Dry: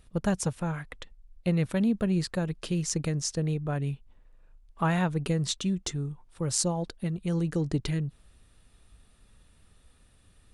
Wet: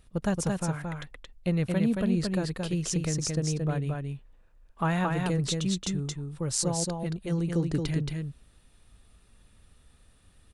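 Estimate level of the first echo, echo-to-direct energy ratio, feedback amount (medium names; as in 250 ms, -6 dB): -3.5 dB, -3.5 dB, no regular repeats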